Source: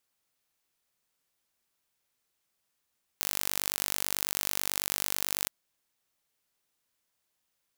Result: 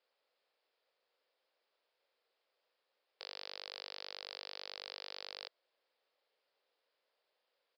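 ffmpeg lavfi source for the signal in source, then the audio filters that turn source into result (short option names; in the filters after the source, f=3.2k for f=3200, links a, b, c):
-f lavfi -i "aevalsrc='0.708*eq(mod(n,898),0)':d=2.28:s=44100"
-af "aresample=11025,asoftclip=type=tanh:threshold=-31dB,aresample=44100,highpass=f=500:t=q:w=3.8"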